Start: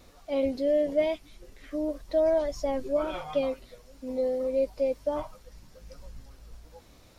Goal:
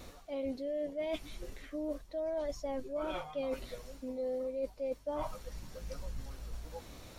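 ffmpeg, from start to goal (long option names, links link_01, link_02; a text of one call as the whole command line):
ffmpeg -i in.wav -af "bandreject=frequency=5000:width=16,areverse,acompressor=threshold=-39dB:ratio=12,areverse,volume=5dB" out.wav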